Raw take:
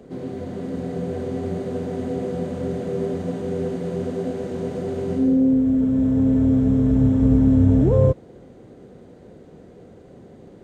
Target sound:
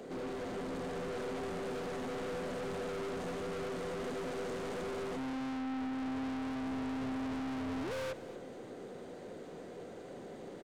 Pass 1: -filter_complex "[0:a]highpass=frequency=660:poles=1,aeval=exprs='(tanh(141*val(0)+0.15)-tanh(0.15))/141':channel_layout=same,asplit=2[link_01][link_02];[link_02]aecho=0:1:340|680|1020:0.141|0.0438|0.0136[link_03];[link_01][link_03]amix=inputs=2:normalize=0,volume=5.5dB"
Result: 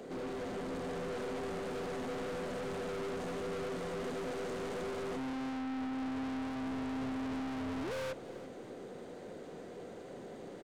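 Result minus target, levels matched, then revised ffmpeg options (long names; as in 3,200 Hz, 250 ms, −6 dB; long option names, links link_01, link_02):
echo 107 ms late
-filter_complex "[0:a]highpass=frequency=660:poles=1,aeval=exprs='(tanh(141*val(0)+0.15)-tanh(0.15))/141':channel_layout=same,asplit=2[link_01][link_02];[link_02]aecho=0:1:233|466|699:0.141|0.0438|0.0136[link_03];[link_01][link_03]amix=inputs=2:normalize=0,volume=5.5dB"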